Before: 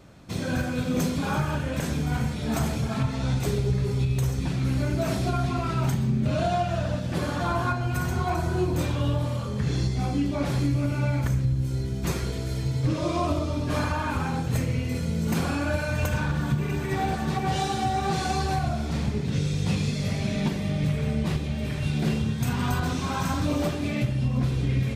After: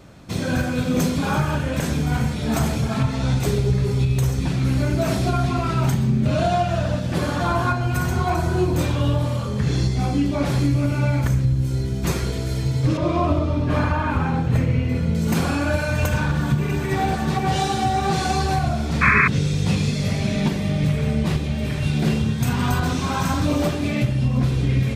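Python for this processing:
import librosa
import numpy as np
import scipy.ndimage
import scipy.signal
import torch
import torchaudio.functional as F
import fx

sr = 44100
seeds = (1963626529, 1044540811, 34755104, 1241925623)

y = fx.bass_treble(x, sr, bass_db=2, treble_db=-13, at=(12.97, 15.15))
y = fx.spec_paint(y, sr, seeds[0], shape='noise', start_s=19.01, length_s=0.27, low_hz=1000.0, high_hz=2600.0, level_db=-21.0)
y = y * librosa.db_to_amplitude(5.0)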